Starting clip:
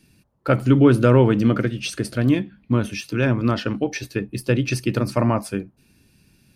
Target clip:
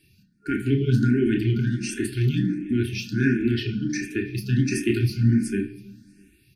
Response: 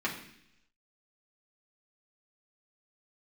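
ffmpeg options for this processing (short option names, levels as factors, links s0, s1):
-filter_complex "[0:a]asettb=1/sr,asplit=3[s0][s1][s2];[s0]atrim=end=4.704[s3];[s1]atrim=start=4.7:end=5.43,asetpts=PTS-STARTPTS,afade=t=in:d=0.004:c=qsin,afade=t=out:st=0.726:d=0.004:c=qsin,asplit=2[s4][s5];[s5]adelay=18,volume=0.562[s6];[s4][s6]amix=inputs=2:normalize=0,atrim=end_sample=32193[s7];[s2]atrim=start=5.426[s8];[s3][s7]acrossfade=d=0.004:c1=hsin:c2=qsin[s9];[s9][s8]acrossfade=d=0.004:c1=qsin:c2=hsin,alimiter=limit=0.335:level=0:latency=1:release=15,asplit=2[s10][s11];[1:a]atrim=start_sample=2205,adelay=26[s12];[s11][s12]afir=irnorm=-1:irlink=0,volume=0.335[s13];[s10][s13]amix=inputs=2:normalize=0,afftfilt=real='re*(1-between(b*sr/4096,420,1400))':imag='im*(1-between(b*sr/4096,420,1400))':win_size=4096:overlap=0.75,aecho=1:1:322|644:0.075|0.0225,asplit=2[s14][s15];[s15]afreqshift=1.4[s16];[s14][s16]amix=inputs=2:normalize=1"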